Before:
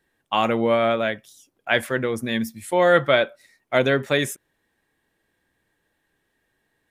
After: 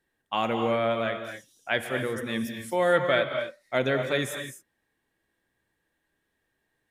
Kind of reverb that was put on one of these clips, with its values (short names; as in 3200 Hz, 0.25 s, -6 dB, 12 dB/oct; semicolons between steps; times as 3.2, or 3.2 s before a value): non-linear reverb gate 0.28 s rising, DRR 5.5 dB; gain -6.5 dB